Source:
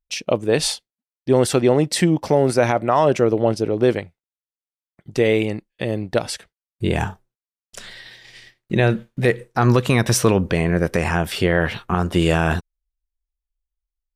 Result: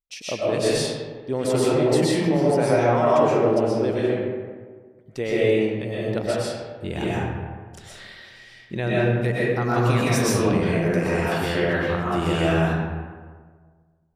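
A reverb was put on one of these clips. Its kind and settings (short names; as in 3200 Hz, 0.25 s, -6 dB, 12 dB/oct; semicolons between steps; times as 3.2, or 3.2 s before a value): digital reverb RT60 1.6 s, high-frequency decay 0.5×, pre-delay 85 ms, DRR -7.5 dB; gain -10.5 dB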